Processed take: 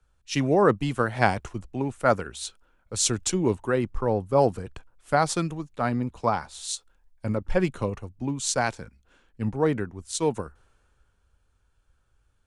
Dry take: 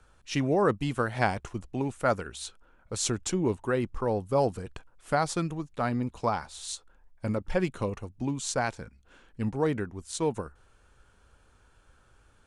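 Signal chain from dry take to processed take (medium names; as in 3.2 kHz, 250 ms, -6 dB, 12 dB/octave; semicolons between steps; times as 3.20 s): three bands expanded up and down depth 40%; trim +3 dB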